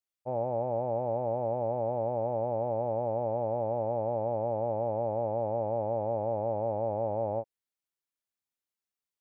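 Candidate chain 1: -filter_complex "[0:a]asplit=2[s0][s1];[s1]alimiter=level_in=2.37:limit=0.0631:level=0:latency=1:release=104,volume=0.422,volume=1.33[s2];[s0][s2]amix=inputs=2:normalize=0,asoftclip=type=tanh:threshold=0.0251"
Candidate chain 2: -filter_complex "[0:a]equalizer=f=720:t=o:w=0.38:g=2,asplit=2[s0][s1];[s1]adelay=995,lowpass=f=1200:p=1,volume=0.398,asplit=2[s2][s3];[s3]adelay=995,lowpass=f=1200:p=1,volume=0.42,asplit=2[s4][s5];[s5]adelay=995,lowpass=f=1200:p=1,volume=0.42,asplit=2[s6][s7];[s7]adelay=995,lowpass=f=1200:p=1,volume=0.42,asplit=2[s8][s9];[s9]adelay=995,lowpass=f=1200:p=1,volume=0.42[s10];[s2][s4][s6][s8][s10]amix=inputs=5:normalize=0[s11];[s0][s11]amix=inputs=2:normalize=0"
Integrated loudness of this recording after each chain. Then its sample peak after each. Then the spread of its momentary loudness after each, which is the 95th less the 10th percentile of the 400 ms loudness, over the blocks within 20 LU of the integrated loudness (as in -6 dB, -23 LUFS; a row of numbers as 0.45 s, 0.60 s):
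-35.0 LUFS, -30.5 LUFS; -32.0 dBFS, -18.0 dBFS; 0 LU, 9 LU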